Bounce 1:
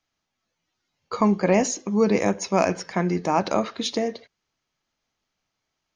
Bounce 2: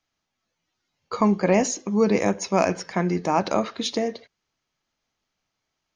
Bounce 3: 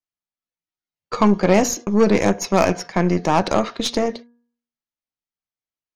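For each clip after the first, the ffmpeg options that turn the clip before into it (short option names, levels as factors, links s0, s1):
-af anull
-af "agate=range=0.0631:threshold=0.0141:ratio=16:detection=peak,aeval=exprs='0.501*(cos(1*acos(clip(val(0)/0.501,-1,1)))-cos(1*PI/2))+0.0355*(cos(8*acos(clip(val(0)/0.501,-1,1)))-cos(8*PI/2))':c=same,bandreject=f=237.8:t=h:w=4,bandreject=f=475.6:t=h:w=4,bandreject=f=713.4:t=h:w=4,bandreject=f=951.2:t=h:w=4,bandreject=f=1189:t=h:w=4,bandreject=f=1426.8:t=h:w=4,bandreject=f=1664.6:t=h:w=4,volume=1.58"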